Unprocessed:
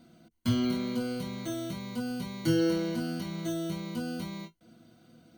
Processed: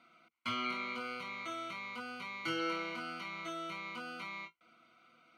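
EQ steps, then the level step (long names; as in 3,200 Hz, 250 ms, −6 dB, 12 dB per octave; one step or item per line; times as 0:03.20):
pair of resonant band-passes 1,700 Hz, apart 0.8 octaves
+11.5 dB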